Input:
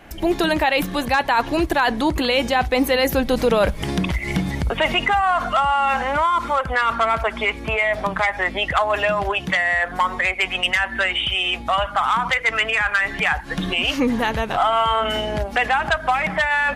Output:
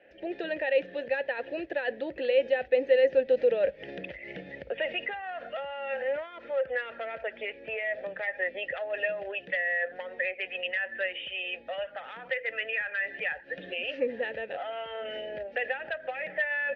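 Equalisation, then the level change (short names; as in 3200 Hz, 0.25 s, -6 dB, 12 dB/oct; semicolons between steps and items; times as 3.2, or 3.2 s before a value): vowel filter e; LPF 6200 Hz 24 dB/oct; air absorption 130 m; 0.0 dB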